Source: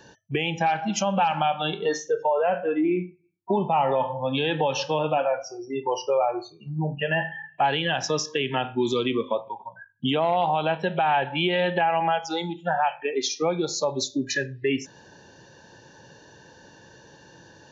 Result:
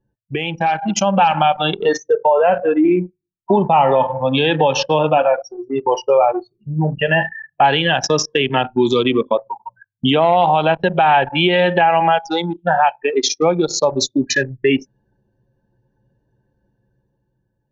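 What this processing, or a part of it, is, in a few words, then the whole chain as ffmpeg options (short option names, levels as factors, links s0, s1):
voice memo with heavy noise removal: -af "anlmdn=39.8,dynaudnorm=f=120:g=13:m=2.11,volume=1.41"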